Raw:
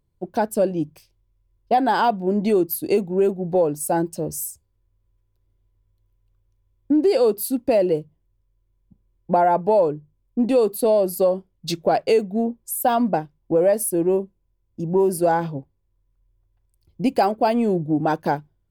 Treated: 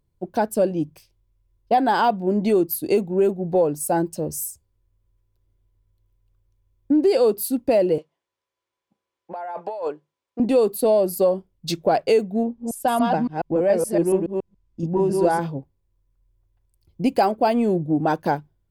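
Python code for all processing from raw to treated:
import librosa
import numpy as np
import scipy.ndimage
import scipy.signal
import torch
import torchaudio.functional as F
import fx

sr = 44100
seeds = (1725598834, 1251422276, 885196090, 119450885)

y = fx.chain(x, sr, fx.bandpass_edges(low_hz=740.0, high_hz=6400.0),
    fx.over_compress(threshold_db=-29.0, ratio=-1.0), at=(7.98, 10.4))
y = fx.chain(y, sr, fx.reverse_delay(ms=141, wet_db=-2.0),
    fx.lowpass(hz=6800.0, slope=12),
    fx.peak_eq(hz=500.0, db=-3.0, octaves=1.8), at=(12.43, 15.39))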